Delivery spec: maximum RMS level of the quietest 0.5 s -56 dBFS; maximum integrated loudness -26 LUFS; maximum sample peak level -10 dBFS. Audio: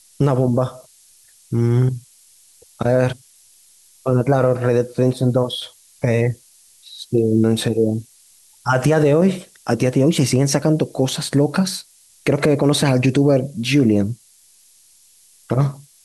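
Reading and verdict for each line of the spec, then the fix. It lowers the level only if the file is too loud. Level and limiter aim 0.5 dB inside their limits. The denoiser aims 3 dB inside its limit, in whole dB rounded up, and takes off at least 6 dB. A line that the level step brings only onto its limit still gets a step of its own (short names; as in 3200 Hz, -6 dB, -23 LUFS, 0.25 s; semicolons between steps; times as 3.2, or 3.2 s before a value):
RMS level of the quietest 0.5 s -52 dBFS: fail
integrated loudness -18.5 LUFS: fail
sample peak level -5.5 dBFS: fail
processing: gain -8 dB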